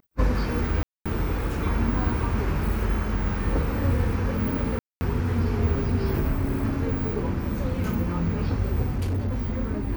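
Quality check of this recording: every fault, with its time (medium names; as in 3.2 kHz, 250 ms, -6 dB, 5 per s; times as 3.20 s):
0.83–1.06 s: dropout 226 ms
4.79–5.01 s: dropout 220 ms
8.95–9.61 s: clipped -22.5 dBFS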